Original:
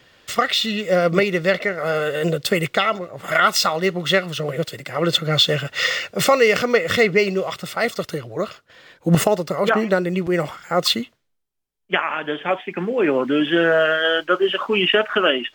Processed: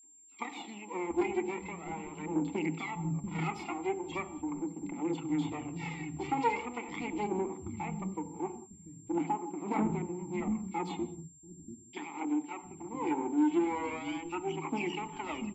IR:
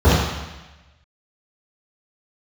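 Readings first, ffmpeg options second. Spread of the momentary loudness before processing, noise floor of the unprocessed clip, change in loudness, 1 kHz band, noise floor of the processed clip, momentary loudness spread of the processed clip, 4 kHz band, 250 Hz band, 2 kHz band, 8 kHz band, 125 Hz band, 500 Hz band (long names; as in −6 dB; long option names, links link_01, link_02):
9 LU, −65 dBFS, −16.0 dB, −12.5 dB, −55 dBFS, 11 LU, −29.5 dB, −9.0 dB, −22.0 dB, −17.0 dB, −14.5 dB, −19.5 dB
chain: -filter_complex "[0:a]afwtdn=0.0355,aphaser=in_gain=1:out_gain=1:delay=2.9:decay=0.74:speed=0.41:type=triangular,equalizer=frequency=65:width=0.36:gain=11.5,aeval=exprs='max(val(0),0)':channel_layout=same,asplit=3[link_01][link_02][link_03];[link_01]bandpass=frequency=300:width_type=q:width=8,volume=0dB[link_04];[link_02]bandpass=frequency=870:width_type=q:width=8,volume=-6dB[link_05];[link_03]bandpass=frequency=2240:width_type=q:width=8,volume=-9dB[link_06];[link_04][link_05][link_06]amix=inputs=3:normalize=0,aemphasis=mode=reproduction:type=cd,asoftclip=type=tanh:threshold=-21dB,aeval=exprs='val(0)+0.00158*sin(2*PI*7400*n/s)':channel_layout=same,acrossover=split=210|3300[link_07][link_08][link_09];[link_08]adelay=30[link_10];[link_07]adelay=720[link_11];[link_11][link_10][link_09]amix=inputs=3:normalize=0,asplit=2[link_12][link_13];[1:a]atrim=start_sample=2205,afade=type=out:start_time=0.25:duration=0.01,atrim=end_sample=11466[link_14];[link_13][link_14]afir=irnorm=-1:irlink=0,volume=-36.5dB[link_15];[link_12][link_15]amix=inputs=2:normalize=0"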